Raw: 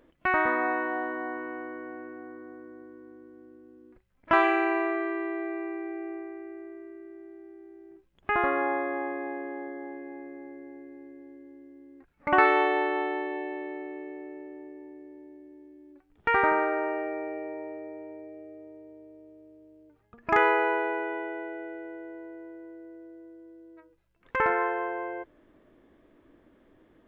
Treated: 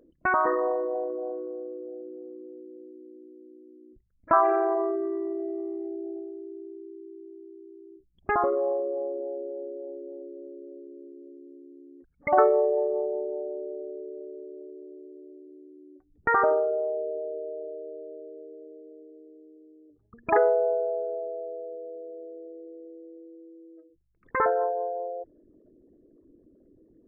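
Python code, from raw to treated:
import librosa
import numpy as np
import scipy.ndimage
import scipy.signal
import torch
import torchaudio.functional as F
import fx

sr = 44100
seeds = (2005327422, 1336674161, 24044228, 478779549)

y = fx.envelope_sharpen(x, sr, power=3.0)
y = y * librosa.db_to_amplitude(1.5)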